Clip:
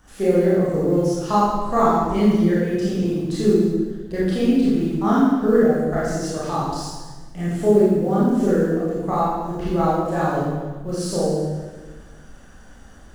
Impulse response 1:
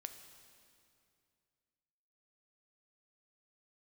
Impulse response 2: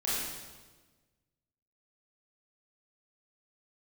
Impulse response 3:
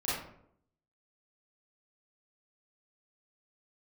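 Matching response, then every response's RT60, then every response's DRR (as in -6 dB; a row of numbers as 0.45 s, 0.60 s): 2; 2.5 s, 1.3 s, 0.70 s; 7.0 dB, -9.0 dB, -10.5 dB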